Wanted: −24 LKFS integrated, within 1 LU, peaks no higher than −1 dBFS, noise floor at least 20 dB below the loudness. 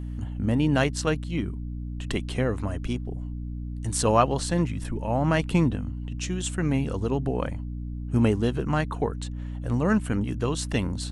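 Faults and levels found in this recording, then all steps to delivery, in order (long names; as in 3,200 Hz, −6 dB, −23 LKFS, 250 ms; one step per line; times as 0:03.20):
mains hum 60 Hz; hum harmonics up to 300 Hz; level of the hum −31 dBFS; integrated loudness −27.0 LKFS; sample peak −7.0 dBFS; target loudness −24.0 LKFS
→ mains-hum notches 60/120/180/240/300 Hz
level +3 dB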